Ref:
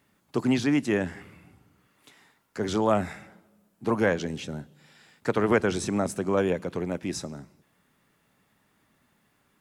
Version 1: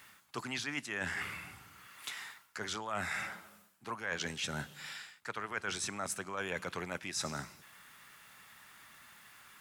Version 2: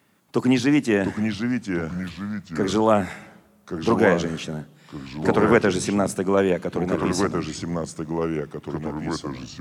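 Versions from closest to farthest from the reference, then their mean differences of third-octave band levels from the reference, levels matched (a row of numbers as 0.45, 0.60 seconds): 2, 1; 3.5, 11.0 decibels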